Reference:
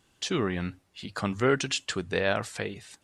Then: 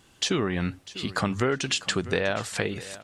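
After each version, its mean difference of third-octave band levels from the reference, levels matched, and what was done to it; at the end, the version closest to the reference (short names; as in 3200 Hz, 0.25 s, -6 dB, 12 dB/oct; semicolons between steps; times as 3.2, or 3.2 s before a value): 4.5 dB: compressor, threshold -30 dBFS, peak gain reduction 11 dB; feedback echo 0.648 s, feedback 23%, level -17 dB; gain +8 dB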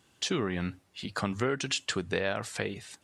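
2.5 dB: HPF 66 Hz; compressor 6:1, threshold -27 dBFS, peak gain reduction 9 dB; gain +1.5 dB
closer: second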